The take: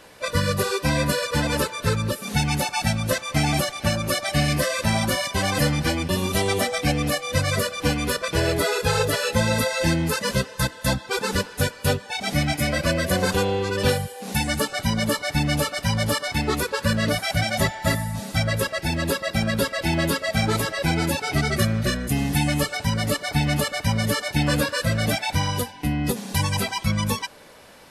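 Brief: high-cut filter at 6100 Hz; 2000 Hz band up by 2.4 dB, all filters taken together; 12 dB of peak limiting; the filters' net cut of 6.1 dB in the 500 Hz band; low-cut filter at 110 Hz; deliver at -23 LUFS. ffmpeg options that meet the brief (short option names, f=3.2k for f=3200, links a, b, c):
-af "highpass=110,lowpass=6.1k,equalizer=f=500:t=o:g=-7.5,equalizer=f=2k:t=o:g=3.5,volume=6.5dB,alimiter=limit=-14dB:level=0:latency=1"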